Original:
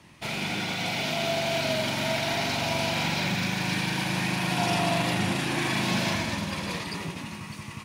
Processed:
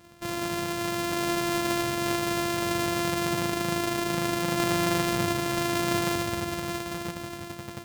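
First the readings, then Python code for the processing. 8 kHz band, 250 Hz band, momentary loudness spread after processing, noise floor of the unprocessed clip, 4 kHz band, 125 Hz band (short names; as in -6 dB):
+2.0 dB, +1.5 dB, 8 LU, -42 dBFS, -4.0 dB, -3.0 dB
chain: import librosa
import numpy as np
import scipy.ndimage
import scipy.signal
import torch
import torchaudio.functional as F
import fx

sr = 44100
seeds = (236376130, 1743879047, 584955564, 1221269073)

y = np.r_[np.sort(x[:len(x) // 128 * 128].reshape(-1, 128), axis=1).ravel(), x[len(x) // 128 * 128:]]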